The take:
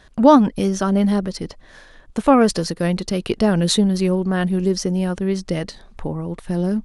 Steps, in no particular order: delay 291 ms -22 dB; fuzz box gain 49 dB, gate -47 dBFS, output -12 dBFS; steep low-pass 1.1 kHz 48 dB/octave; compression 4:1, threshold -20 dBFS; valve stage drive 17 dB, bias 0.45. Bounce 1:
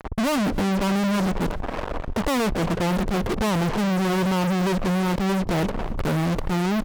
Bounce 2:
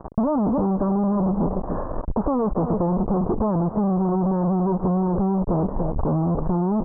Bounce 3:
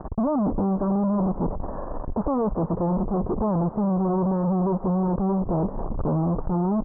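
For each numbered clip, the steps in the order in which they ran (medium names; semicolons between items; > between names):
steep low-pass > fuzz box > compression > valve stage > delay; delay > valve stage > fuzz box > steep low-pass > compression; fuzz box > delay > compression > valve stage > steep low-pass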